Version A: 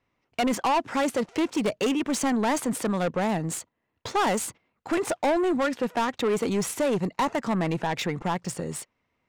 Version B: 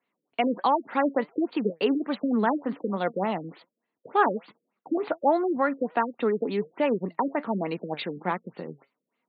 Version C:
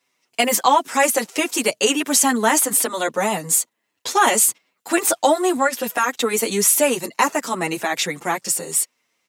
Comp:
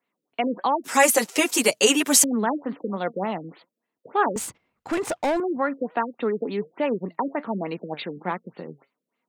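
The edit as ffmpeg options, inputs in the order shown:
-filter_complex "[1:a]asplit=3[a][b][c];[a]atrim=end=0.842[d];[2:a]atrim=start=0.838:end=2.242[e];[b]atrim=start=2.238:end=4.362[f];[0:a]atrim=start=4.358:end=5.402[g];[c]atrim=start=5.398[h];[d][e]acrossfade=d=0.004:c1=hsin:c2=hsin[i];[i][f]acrossfade=d=0.004:c1=hsin:c2=hsin[j];[j][g]acrossfade=d=0.004:c1=hsin:c2=hsin[k];[k][h]acrossfade=d=0.004:c1=hsin:c2=hsin"

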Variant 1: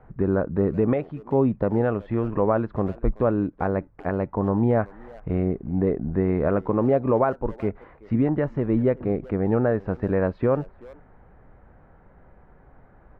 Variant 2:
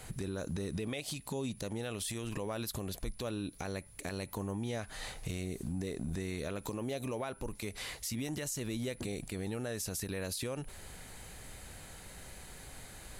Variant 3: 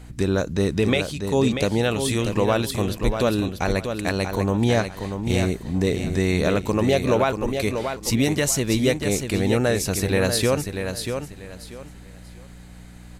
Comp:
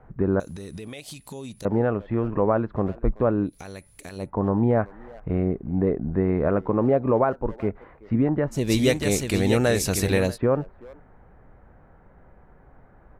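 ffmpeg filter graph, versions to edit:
-filter_complex "[1:a]asplit=2[a][b];[0:a]asplit=4[c][d][e][f];[c]atrim=end=0.402[g];[a]atrim=start=0.398:end=1.652[h];[d]atrim=start=1.648:end=3.59[i];[b]atrim=start=3.43:end=4.31[j];[e]atrim=start=4.15:end=8.75[k];[2:a]atrim=start=8.51:end=10.38[l];[f]atrim=start=10.14[m];[g][h]acrossfade=d=0.004:c1=hsin:c2=hsin[n];[n][i]acrossfade=d=0.004:c1=hsin:c2=hsin[o];[o][j]acrossfade=d=0.16:c1=tri:c2=tri[p];[p][k]acrossfade=d=0.16:c1=tri:c2=tri[q];[q][l]acrossfade=d=0.24:c1=tri:c2=tri[r];[r][m]acrossfade=d=0.24:c1=tri:c2=tri"

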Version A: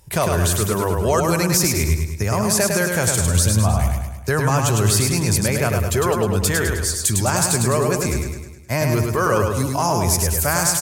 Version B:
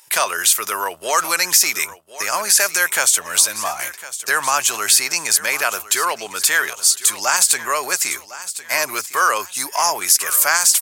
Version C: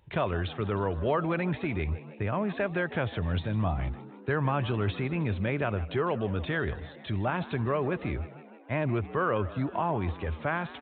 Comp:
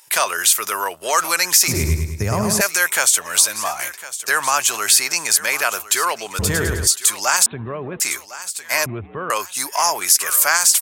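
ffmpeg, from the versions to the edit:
-filter_complex "[0:a]asplit=2[a][b];[2:a]asplit=2[c][d];[1:a]asplit=5[e][f][g][h][i];[e]atrim=end=1.682[j];[a]atrim=start=1.678:end=2.612[k];[f]atrim=start=2.608:end=6.392[l];[b]atrim=start=6.388:end=6.872[m];[g]atrim=start=6.868:end=7.462[n];[c]atrim=start=7.458:end=8.002[o];[h]atrim=start=7.998:end=8.862[p];[d]atrim=start=8.858:end=9.302[q];[i]atrim=start=9.298[r];[j][k]acrossfade=d=0.004:c1=hsin:c2=hsin[s];[s][l]acrossfade=d=0.004:c1=hsin:c2=hsin[t];[t][m]acrossfade=d=0.004:c1=hsin:c2=hsin[u];[u][n]acrossfade=d=0.004:c1=hsin:c2=hsin[v];[v][o]acrossfade=d=0.004:c1=hsin:c2=hsin[w];[w][p]acrossfade=d=0.004:c1=hsin:c2=hsin[x];[x][q]acrossfade=d=0.004:c1=hsin:c2=hsin[y];[y][r]acrossfade=d=0.004:c1=hsin:c2=hsin"

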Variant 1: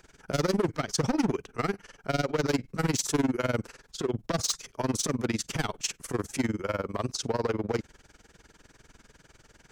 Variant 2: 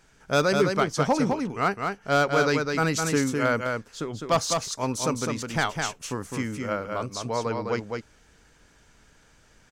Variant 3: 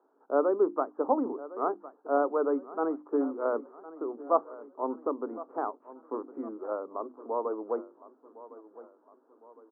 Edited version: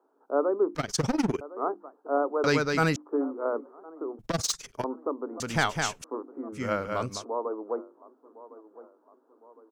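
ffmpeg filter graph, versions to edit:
-filter_complex "[0:a]asplit=2[a][b];[1:a]asplit=3[c][d][e];[2:a]asplit=6[f][g][h][i][j][k];[f]atrim=end=0.752[l];[a]atrim=start=0.748:end=1.412[m];[g]atrim=start=1.408:end=2.442[n];[c]atrim=start=2.438:end=2.962[o];[h]atrim=start=2.958:end=4.192[p];[b]atrim=start=4.188:end=4.842[q];[i]atrim=start=4.838:end=5.402[r];[d]atrim=start=5.398:end=6.042[s];[j]atrim=start=6.038:end=6.62[t];[e]atrim=start=6.52:end=7.25[u];[k]atrim=start=7.15[v];[l][m]acrossfade=d=0.004:c1=hsin:c2=hsin[w];[w][n]acrossfade=d=0.004:c1=hsin:c2=hsin[x];[x][o]acrossfade=d=0.004:c1=hsin:c2=hsin[y];[y][p]acrossfade=d=0.004:c1=hsin:c2=hsin[z];[z][q]acrossfade=d=0.004:c1=hsin:c2=hsin[aa];[aa][r]acrossfade=d=0.004:c1=hsin:c2=hsin[ab];[ab][s]acrossfade=d=0.004:c1=hsin:c2=hsin[ac];[ac][t]acrossfade=d=0.004:c1=hsin:c2=hsin[ad];[ad][u]acrossfade=d=0.1:c1=tri:c2=tri[ae];[ae][v]acrossfade=d=0.1:c1=tri:c2=tri"

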